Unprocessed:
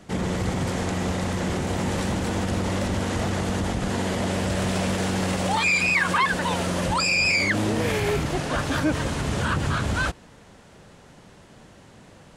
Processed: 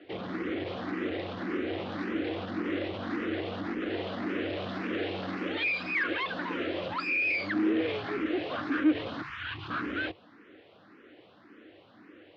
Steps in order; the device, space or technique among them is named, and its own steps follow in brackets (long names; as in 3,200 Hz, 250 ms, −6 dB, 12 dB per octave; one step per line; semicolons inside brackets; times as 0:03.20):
0:09.22–0:09.70: elliptic band-stop filter 140–910 Hz
barber-pole phaser into a guitar amplifier (frequency shifter mixed with the dry sound +1.8 Hz; soft clipping −24 dBFS, distortion −14 dB; loudspeaker in its box 86–3,800 Hz, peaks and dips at 97 Hz +8 dB, 160 Hz −6 dB, 310 Hz +10 dB, 610 Hz −3 dB, 900 Hz −10 dB)
three-way crossover with the lows and the highs turned down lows −18 dB, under 240 Hz, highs −19 dB, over 5,100 Hz